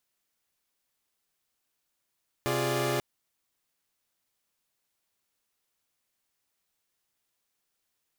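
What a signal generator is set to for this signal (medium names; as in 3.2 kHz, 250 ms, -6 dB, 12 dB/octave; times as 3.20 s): chord C3/F4/G#4/D5 saw, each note -29.5 dBFS 0.54 s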